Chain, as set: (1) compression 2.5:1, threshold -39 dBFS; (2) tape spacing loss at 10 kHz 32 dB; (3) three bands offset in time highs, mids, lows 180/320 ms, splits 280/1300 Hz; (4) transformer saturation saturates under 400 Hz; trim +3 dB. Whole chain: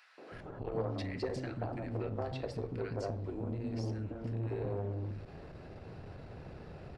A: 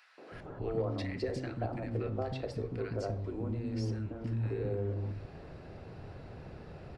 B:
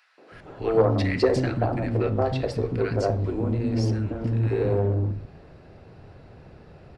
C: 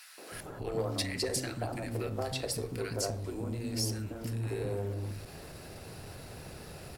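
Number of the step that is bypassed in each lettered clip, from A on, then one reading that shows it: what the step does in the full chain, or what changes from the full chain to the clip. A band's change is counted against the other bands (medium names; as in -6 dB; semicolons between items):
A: 4, momentary loudness spread change +2 LU; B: 1, mean gain reduction 8.5 dB; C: 2, 4 kHz band +12.5 dB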